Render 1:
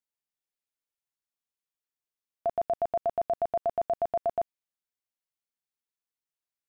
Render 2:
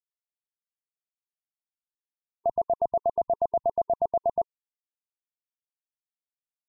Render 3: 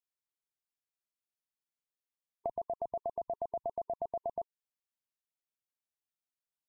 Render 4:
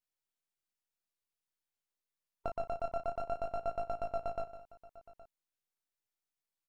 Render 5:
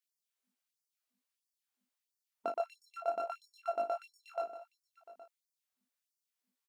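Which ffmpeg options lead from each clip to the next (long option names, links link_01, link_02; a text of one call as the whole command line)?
ffmpeg -i in.wav -af "afftfilt=real='re*gte(hypot(re,im),0.0178)':imag='im*gte(hypot(re,im),0.0178)':win_size=1024:overlap=0.75,volume=3dB" out.wav
ffmpeg -i in.wav -af "acompressor=threshold=-31dB:ratio=10,volume=-2.5dB" out.wav
ffmpeg -i in.wav -af "aeval=exprs='if(lt(val(0),0),0.251*val(0),val(0))':channel_layout=same,flanger=delay=18.5:depth=5.1:speed=0.51,aecho=1:1:156|818:0.251|0.119,volume=6dB" out.wav
ffmpeg -i in.wav -filter_complex "[0:a]aeval=exprs='val(0)+0.000447*(sin(2*PI*50*n/s)+sin(2*PI*2*50*n/s)/2+sin(2*PI*3*50*n/s)/3+sin(2*PI*4*50*n/s)/4+sin(2*PI*5*50*n/s)/5)':channel_layout=same,asplit=2[link_01][link_02];[link_02]adelay=22,volume=-5dB[link_03];[link_01][link_03]amix=inputs=2:normalize=0,afftfilt=real='re*gte(b*sr/1024,210*pow(4500/210,0.5+0.5*sin(2*PI*1.5*pts/sr)))':imag='im*gte(b*sr/1024,210*pow(4500/210,0.5+0.5*sin(2*PI*1.5*pts/sr)))':win_size=1024:overlap=0.75,volume=1.5dB" out.wav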